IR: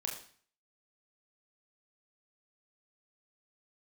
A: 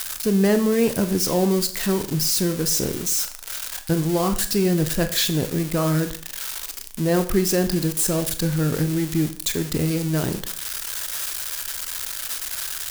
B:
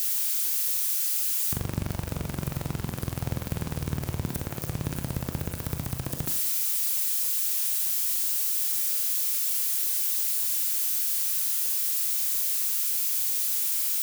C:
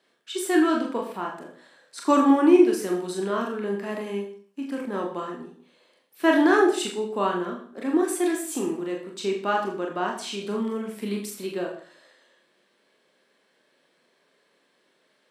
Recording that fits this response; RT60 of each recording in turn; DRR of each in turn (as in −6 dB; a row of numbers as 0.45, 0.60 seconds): C; 0.45, 0.45, 0.45 seconds; 8.5, 4.5, −0.5 decibels